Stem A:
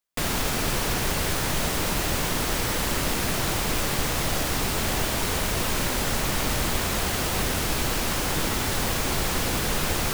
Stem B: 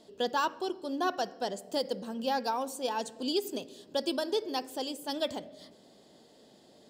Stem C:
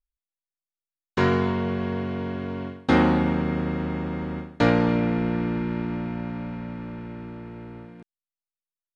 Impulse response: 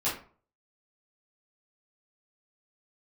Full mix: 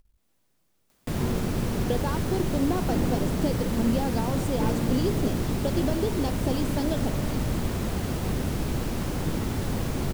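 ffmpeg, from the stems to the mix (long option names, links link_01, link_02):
-filter_complex "[0:a]adelay=900,volume=-12.5dB[link_01];[1:a]acompressor=threshold=-36dB:ratio=6,adelay=1700,volume=0.5dB[link_02];[2:a]aeval=exprs='if(lt(val(0),0),0.251*val(0),val(0))':channel_layout=same,volume=-19dB[link_03];[link_01][link_02][link_03]amix=inputs=3:normalize=0,equalizer=frequency=220:width=0.33:gain=11.5,acompressor=mode=upward:threshold=-44dB:ratio=2.5,lowshelf=frequency=170:gain=9"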